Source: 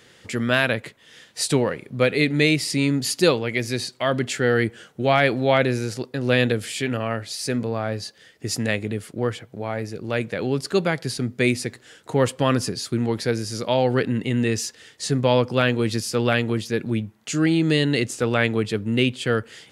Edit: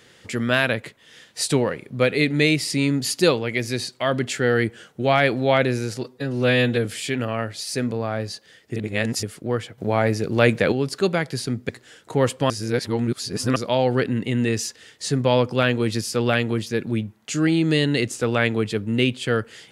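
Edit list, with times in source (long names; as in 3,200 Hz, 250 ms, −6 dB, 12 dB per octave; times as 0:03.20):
0:06.01–0:06.57: time-stretch 1.5×
0:08.48–0:08.95: reverse
0:09.50–0:10.44: clip gain +8 dB
0:11.41–0:11.68: remove
0:12.49–0:13.55: reverse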